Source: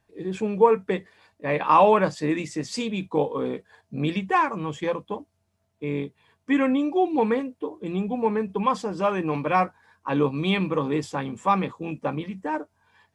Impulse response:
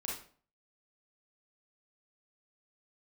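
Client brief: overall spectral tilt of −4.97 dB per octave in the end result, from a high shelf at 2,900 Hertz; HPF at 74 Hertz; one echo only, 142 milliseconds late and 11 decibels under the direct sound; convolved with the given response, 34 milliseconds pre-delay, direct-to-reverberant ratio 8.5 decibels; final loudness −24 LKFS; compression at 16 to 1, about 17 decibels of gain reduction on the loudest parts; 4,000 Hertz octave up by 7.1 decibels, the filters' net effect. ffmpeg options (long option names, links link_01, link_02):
-filter_complex "[0:a]highpass=74,highshelf=frequency=2900:gain=3.5,equalizer=frequency=4000:width_type=o:gain=6.5,acompressor=threshold=-28dB:ratio=16,aecho=1:1:142:0.282,asplit=2[link_01][link_02];[1:a]atrim=start_sample=2205,adelay=34[link_03];[link_02][link_03]afir=irnorm=-1:irlink=0,volume=-9.5dB[link_04];[link_01][link_04]amix=inputs=2:normalize=0,volume=9dB"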